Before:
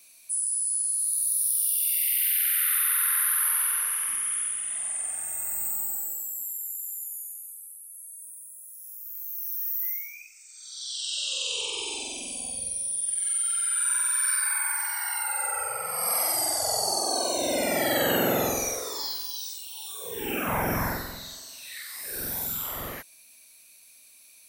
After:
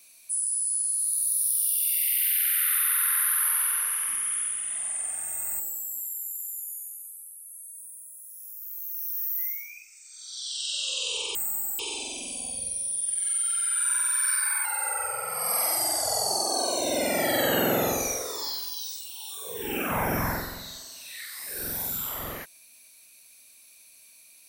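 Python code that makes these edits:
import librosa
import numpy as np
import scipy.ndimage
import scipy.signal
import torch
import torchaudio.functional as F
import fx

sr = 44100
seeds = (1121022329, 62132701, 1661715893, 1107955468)

y = fx.edit(x, sr, fx.move(start_s=5.6, length_s=0.44, to_s=11.79),
    fx.cut(start_s=14.65, length_s=0.57), tone=tone)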